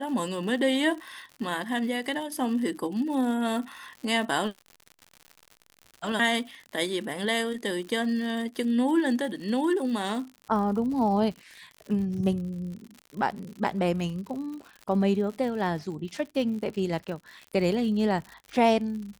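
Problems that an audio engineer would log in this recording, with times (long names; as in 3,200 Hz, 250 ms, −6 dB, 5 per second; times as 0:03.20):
surface crackle 98 per second −36 dBFS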